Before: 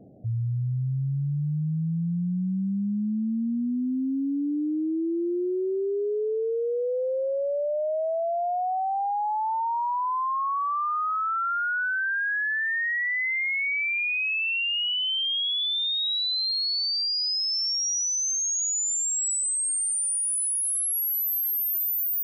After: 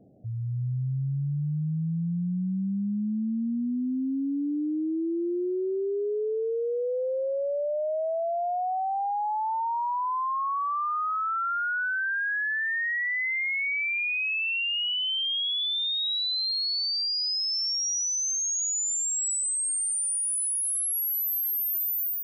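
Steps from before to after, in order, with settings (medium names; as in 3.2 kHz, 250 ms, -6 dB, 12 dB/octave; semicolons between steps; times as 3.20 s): level rider gain up to 4.5 dB; trim -6 dB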